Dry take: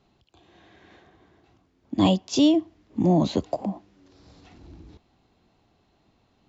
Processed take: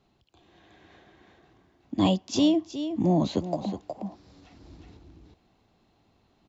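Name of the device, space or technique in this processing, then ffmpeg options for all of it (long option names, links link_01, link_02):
ducked delay: -filter_complex "[0:a]asplit=3[link_01][link_02][link_03];[link_02]adelay=366,volume=-2.5dB[link_04];[link_03]apad=whole_len=302181[link_05];[link_04][link_05]sidechaincompress=threshold=-30dB:ratio=8:attack=37:release=669[link_06];[link_01][link_06]amix=inputs=2:normalize=0,volume=-3dB"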